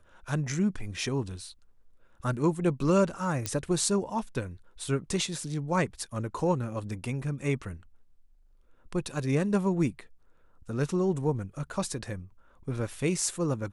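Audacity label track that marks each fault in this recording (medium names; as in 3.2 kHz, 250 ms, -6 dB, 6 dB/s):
3.460000	3.460000	pop -14 dBFS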